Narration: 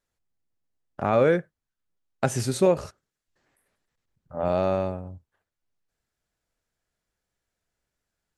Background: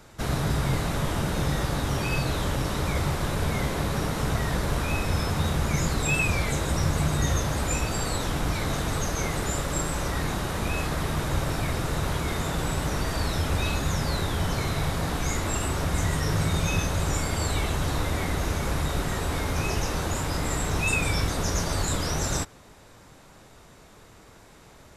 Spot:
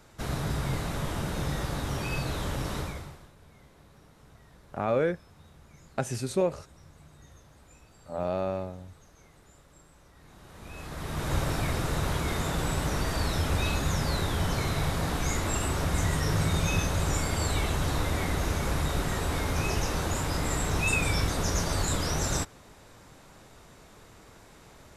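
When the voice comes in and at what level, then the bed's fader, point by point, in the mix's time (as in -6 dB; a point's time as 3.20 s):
3.75 s, -6.0 dB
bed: 2.79 s -5 dB
3.34 s -29 dB
10.14 s -29 dB
11.33 s -1.5 dB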